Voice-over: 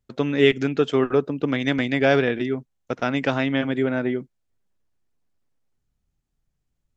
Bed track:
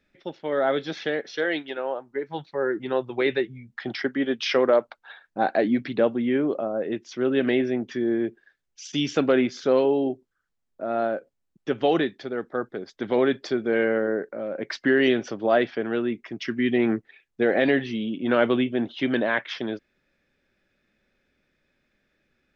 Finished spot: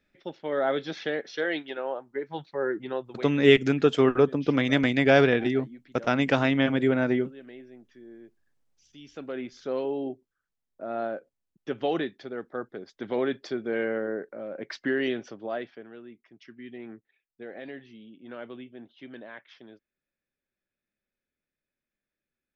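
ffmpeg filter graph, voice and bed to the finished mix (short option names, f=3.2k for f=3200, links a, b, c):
-filter_complex "[0:a]adelay=3050,volume=-0.5dB[a];[1:a]volume=14.5dB,afade=t=out:st=2.72:d=0.62:silence=0.0944061,afade=t=in:st=9.01:d=1.28:silence=0.133352,afade=t=out:st=14.8:d=1.13:silence=0.199526[b];[a][b]amix=inputs=2:normalize=0"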